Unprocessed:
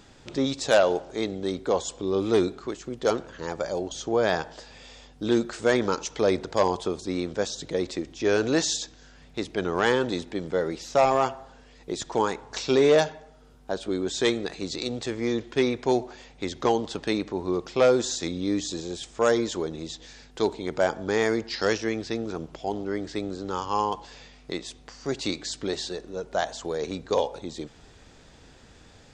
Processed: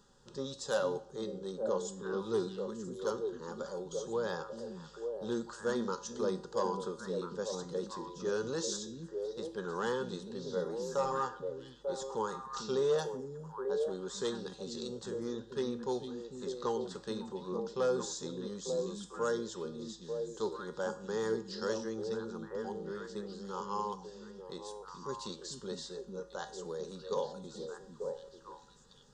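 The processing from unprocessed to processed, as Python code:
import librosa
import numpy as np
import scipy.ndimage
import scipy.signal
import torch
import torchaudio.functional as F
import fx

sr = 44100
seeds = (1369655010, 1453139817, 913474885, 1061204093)

y = fx.fixed_phaser(x, sr, hz=450.0, stages=8)
y = fx.comb_fb(y, sr, f0_hz=110.0, decay_s=0.47, harmonics='odd', damping=0.0, mix_pct=70)
y = fx.echo_stepped(y, sr, ms=446, hz=190.0, octaves=1.4, feedback_pct=70, wet_db=-0.5)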